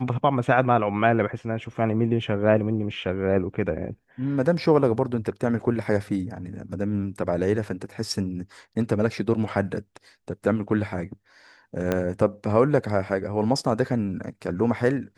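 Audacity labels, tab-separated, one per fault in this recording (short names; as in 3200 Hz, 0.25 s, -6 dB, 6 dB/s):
11.920000	11.920000	pop -10 dBFS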